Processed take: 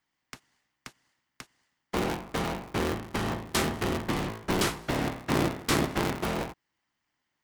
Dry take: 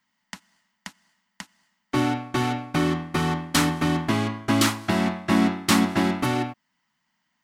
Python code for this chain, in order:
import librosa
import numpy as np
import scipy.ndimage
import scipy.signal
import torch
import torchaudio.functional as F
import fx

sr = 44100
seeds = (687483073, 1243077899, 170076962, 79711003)

y = fx.cycle_switch(x, sr, every=3, mode='inverted')
y = F.gain(torch.from_numpy(y), -6.5).numpy()